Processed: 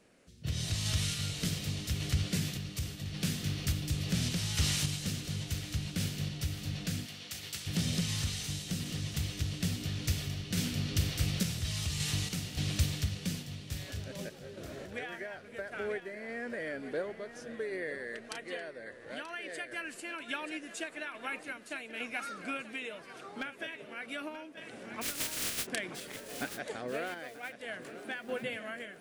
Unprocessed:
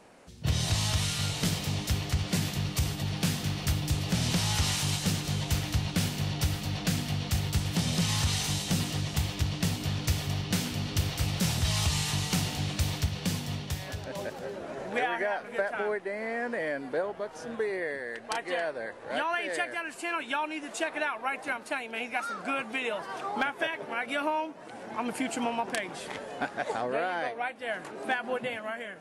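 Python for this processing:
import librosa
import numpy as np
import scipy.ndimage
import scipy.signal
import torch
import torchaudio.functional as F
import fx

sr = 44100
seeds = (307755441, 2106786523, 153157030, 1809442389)

y = fx.spec_flatten(x, sr, power=0.11, at=(25.01, 25.65), fade=0.02)
y = fx.peak_eq(y, sr, hz=880.0, db=-12.0, octaves=0.87)
y = fx.echo_feedback(y, sr, ms=933, feedback_pct=35, wet_db=-12.5)
y = fx.tremolo_random(y, sr, seeds[0], hz=3.5, depth_pct=55)
y = fx.highpass(y, sr, hz=fx.line((7.05, 560.0), (7.66, 1300.0)), slope=6, at=(7.05, 7.66), fade=0.02)
y = F.gain(torch.from_numpy(y), -1.5).numpy()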